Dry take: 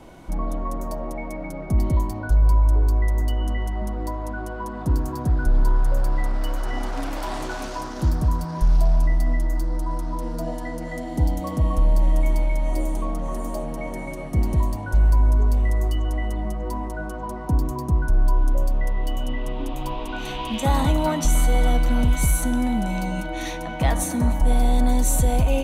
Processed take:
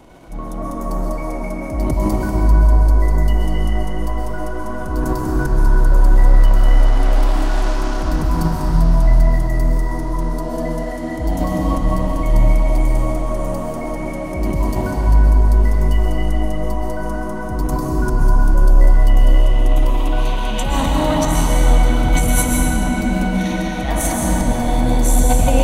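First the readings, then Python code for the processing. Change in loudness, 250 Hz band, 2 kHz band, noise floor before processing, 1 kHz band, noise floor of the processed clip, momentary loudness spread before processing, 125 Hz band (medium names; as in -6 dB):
+5.5 dB, +6.5 dB, +6.0 dB, -32 dBFS, +6.0 dB, -24 dBFS, 10 LU, +5.0 dB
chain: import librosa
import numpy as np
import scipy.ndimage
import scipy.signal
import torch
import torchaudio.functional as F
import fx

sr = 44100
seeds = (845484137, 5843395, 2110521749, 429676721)

y = fx.wow_flutter(x, sr, seeds[0], rate_hz=2.1, depth_cents=21.0)
y = fx.transient(y, sr, attack_db=-10, sustain_db=11)
y = fx.rev_freeverb(y, sr, rt60_s=4.0, hf_ratio=0.75, predelay_ms=90, drr_db=-3.0)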